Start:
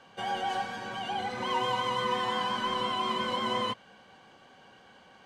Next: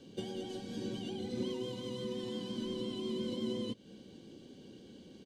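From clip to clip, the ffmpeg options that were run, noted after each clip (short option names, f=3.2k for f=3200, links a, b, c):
-af "acompressor=threshold=-38dB:ratio=4,firequalizer=gain_entry='entry(120,0);entry(320,7);entry(750,-22);entry(1200,-26);entry(3600,-5)':delay=0.05:min_phase=1,volume=6.5dB"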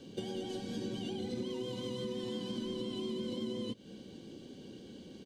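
-af "acompressor=threshold=-38dB:ratio=6,volume=3.5dB"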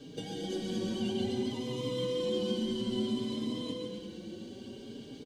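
-filter_complex "[0:a]asplit=2[a][b];[b]aecho=0:1:140|252|341.6|413.3|470.6:0.631|0.398|0.251|0.158|0.1[c];[a][c]amix=inputs=2:normalize=0,asplit=2[d][e];[e]adelay=4.5,afreqshift=0.58[f];[d][f]amix=inputs=2:normalize=1,volume=5.5dB"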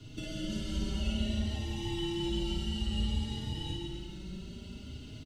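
-filter_complex "[0:a]afreqshift=-160,asplit=2[a][b];[b]aecho=0:1:39|55:0.473|0.668[c];[a][c]amix=inputs=2:normalize=0,volume=-1dB"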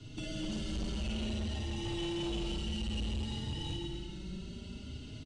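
-af "volume=32.5dB,asoftclip=hard,volume=-32.5dB,aresample=22050,aresample=44100"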